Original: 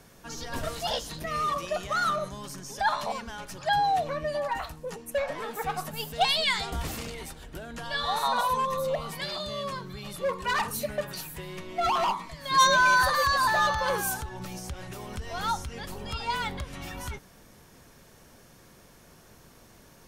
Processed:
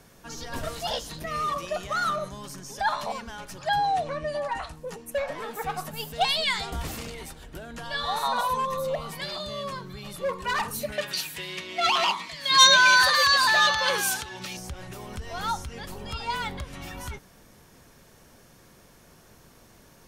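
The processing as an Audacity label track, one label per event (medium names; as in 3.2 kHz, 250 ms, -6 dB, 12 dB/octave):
3.850000	4.730000	steep low-pass 11 kHz 72 dB/octave
10.920000	14.570000	frequency weighting D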